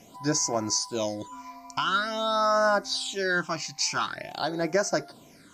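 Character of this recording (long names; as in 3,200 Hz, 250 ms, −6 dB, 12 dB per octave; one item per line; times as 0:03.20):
a quantiser's noise floor 10 bits, dither none
phaser sweep stages 8, 0.47 Hz, lowest notch 430–3,500 Hz
MP3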